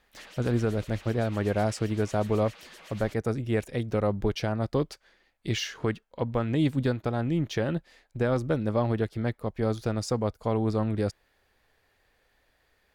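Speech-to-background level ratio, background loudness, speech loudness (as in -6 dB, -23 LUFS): 19.5 dB, -48.5 LUFS, -29.0 LUFS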